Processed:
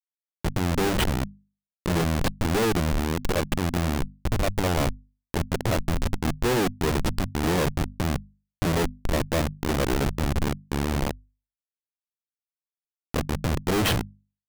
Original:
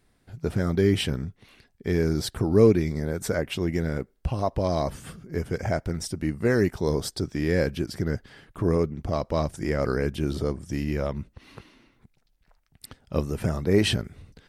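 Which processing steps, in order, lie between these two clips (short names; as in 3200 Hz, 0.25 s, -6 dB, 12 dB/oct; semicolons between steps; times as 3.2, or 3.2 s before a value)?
Schmitt trigger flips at -24 dBFS; notches 50/100/150/200/250 Hz; gain +5 dB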